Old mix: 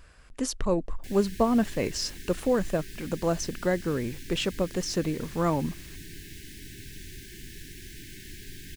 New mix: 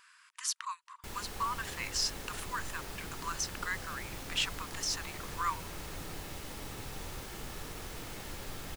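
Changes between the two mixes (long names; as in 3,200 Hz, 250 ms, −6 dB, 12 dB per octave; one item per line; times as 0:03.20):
speech: add linear-phase brick-wall high-pass 920 Hz
background: remove linear-phase brick-wall band-stop 420–1,500 Hz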